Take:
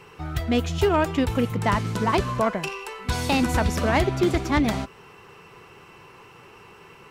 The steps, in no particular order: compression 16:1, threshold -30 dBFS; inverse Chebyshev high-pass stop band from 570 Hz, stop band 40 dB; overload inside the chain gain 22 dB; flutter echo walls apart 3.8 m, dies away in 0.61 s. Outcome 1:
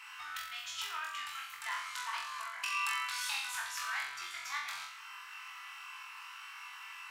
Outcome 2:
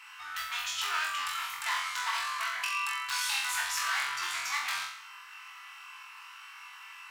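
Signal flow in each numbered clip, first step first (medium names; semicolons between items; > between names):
compression > flutter echo > overload inside the chain > inverse Chebyshev high-pass; overload inside the chain > inverse Chebyshev high-pass > compression > flutter echo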